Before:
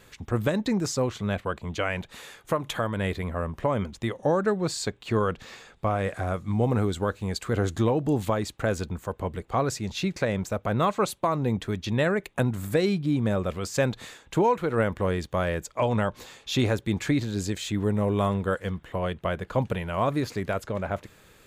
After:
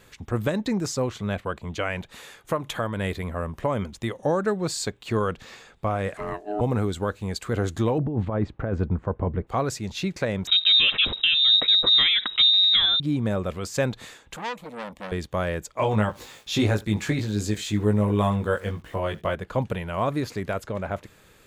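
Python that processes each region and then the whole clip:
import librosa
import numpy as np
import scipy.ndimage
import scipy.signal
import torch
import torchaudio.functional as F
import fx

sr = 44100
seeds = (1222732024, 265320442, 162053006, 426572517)

y = fx.chain(x, sr, fx.high_shelf(hz=5600.0, db=4.5),
    fx.quant_float(bits=8), at=(2.96, 5.41))
y = fx.chain(y, sr, fx.high_shelf(hz=4600.0, db=-5.5),
    fx.ring_mod(carrier_hz=520.0), at=(6.17, 6.61))
y = fx.chain(y, sr, fx.lowpass(hz=1600.0, slope=12),
    fx.over_compress(threshold_db=-28.0, ratio=-1.0),
    fx.low_shelf(hz=350.0, db=6.5), at=(7.98, 9.47))
y = fx.chain(y, sr, fx.low_shelf_res(hz=130.0, db=13.0, q=1.5),
    fx.freq_invert(carrier_hz=3800),
    fx.env_flatten(amount_pct=50), at=(10.47, 13.0))
y = fx.chain(y, sr, fx.low_shelf(hz=400.0, db=-5.5),
    fx.fixed_phaser(hz=390.0, stages=6),
    fx.transformer_sat(knee_hz=2200.0), at=(14.36, 15.12))
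y = fx.chain(y, sr, fx.sample_gate(floor_db=-52.0),
    fx.doubler(ms=19.0, db=-3.0),
    fx.echo_single(ms=75, db=-22.0), at=(15.78, 19.35))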